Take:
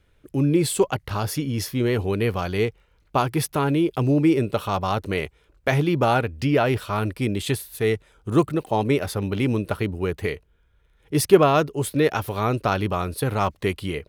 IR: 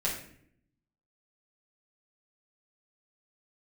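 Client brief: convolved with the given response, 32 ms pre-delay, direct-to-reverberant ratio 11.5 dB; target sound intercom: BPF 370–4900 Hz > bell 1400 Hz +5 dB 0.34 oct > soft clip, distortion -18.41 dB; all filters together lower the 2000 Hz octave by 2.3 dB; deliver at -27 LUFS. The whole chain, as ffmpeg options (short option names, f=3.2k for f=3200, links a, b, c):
-filter_complex "[0:a]equalizer=f=2k:t=o:g=-6,asplit=2[a][b];[1:a]atrim=start_sample=2205,adelay=32[c];[b][c]afir=irnorm=-1:irlink=0,volume=-18dB[d];[a][d]amix=inputs=2:normalize=0,highpass=370,lowpass=4.9k,equalizer=f=1.4k:t=o:w=0.34:g=5,asoftclip=threshold=-10.5dB"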